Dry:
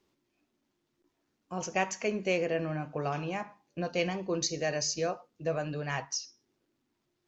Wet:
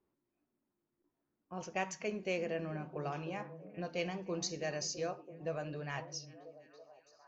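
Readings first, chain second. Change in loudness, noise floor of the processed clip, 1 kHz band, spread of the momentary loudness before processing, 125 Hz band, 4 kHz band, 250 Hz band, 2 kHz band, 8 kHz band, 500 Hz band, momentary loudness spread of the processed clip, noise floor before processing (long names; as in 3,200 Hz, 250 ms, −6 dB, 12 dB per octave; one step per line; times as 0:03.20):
−7.0 dB, below −85 dBFS, −7.0 dB, 8 LU, −6.5 dB, −7.5 dB, −6.5 dB, −7.0 dB, can't be measured, −6.5 dB, 14 LU, −80 dBFS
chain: low-pass that shuts in the quiet parts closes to 1,500 Hz, open at −26 dBFS
echo through a band-pass that steps 330 ms, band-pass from 180 Hz, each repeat 0.7 octaves, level −8 dB
level −7 dB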